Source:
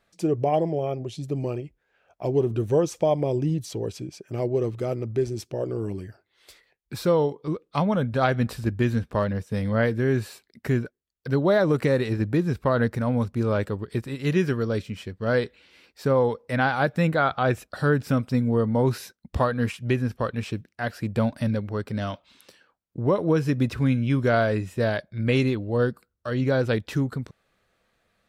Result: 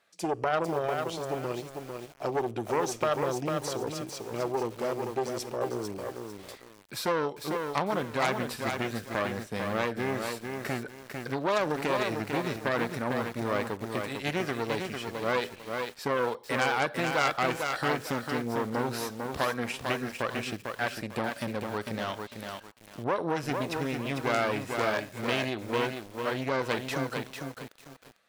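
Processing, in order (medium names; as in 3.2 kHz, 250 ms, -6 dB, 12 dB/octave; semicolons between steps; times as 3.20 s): Schroeder reverb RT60 0.52 s, combs from 30 ms, DRR 19 dB; Chebyshev shaper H 3 -12 dB, 4 -13 dB, 5 -16 dB, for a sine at -9.5 dBFS; compression, threshold -20 dBFS, peak gain reduction 5 dB; high-pass 630 Hz 6 dB/octave; bit-crushed delay 449 ms, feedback 35%, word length 8-bit, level -4.5 dB; trim +1.5 dB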